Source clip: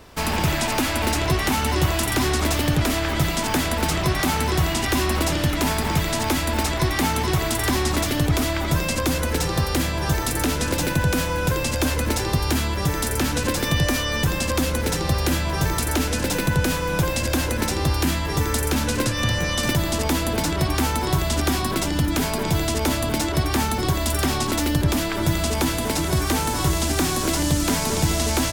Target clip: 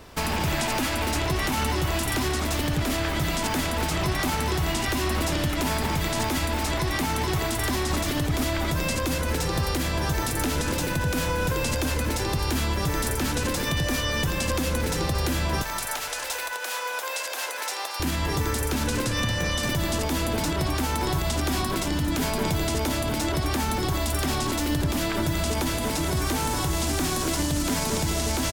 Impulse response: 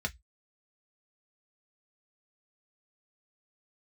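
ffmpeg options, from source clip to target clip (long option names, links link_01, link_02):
-filter_complex "[0:a]alimiter=limit=-16.5dB:level=0:latency=1:release=74,asettb=1/sr,asplit=3[link_01][link_02][link_03];[link_01]atrim=end=15.624[link_04];[link_02]atrim=start=15.62:end=18,asetpts=PTS-STARTPTS,afade=type=in:duration=0.004:curve=qsin,afade=type=out:start_time=2.376:duration=0.004:curve=qsin,highpass=frequency=610:width=0.5412,highpass=frequency=610:width=1.3066[link_05];[link_03]atrim=start=17.996[link_06];[link_04][link_05]acrossfade=duration=0.004:curve1=hsin:curve2=qsin[link_07];[link_07][link_06]acrossfade=duration=0.004:curve1=qsin:curve2=hsin,asplit=5[link_08][link_09][link_10][link_11][link_12];[link_09]adelay=228,afreqshift=-33,volume=-14dB[link_13];[link_10]adelay=456,afreqshift=-66,volume=-20.6dB[link_14];[link_11]adelay=684,afreqshift=-99,volume=-27.1dB[link_15];[link_12]adelay=912,afreqshift=-132,volume=-33.7dB[link_16];[link_08][link_13][link_14][link_15][link_16]amix=inputs=5:normalize=0"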